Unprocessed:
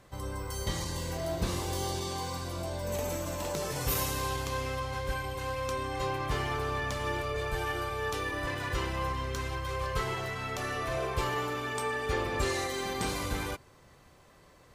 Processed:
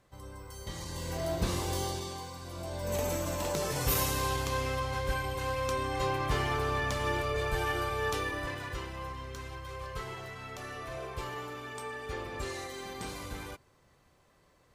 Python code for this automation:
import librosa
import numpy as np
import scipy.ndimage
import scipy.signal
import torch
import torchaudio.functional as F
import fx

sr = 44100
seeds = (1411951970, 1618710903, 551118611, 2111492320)

y = fx.gain(x, sr, db=fx.line((0.63, -9.0), (1.2, 0.5), (1.77, 0.5), (2.35, -8.0), (2.97, 1.5), (8.13, 1.5), (8.87, -7.5)))